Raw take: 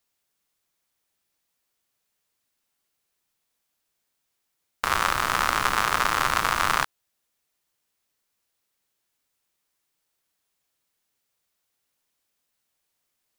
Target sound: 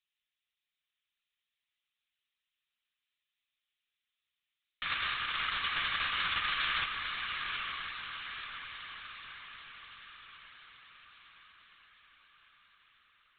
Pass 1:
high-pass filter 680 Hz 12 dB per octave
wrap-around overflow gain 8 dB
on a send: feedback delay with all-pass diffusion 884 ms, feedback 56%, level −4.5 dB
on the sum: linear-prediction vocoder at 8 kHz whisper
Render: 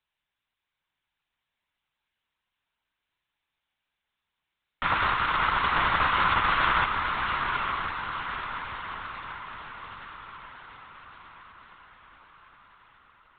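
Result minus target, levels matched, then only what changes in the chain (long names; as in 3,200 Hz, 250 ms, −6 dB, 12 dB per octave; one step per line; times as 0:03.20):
500 Hz band +10.0 dB
change: high-pass filter 2,700 Hz 12 dB per octave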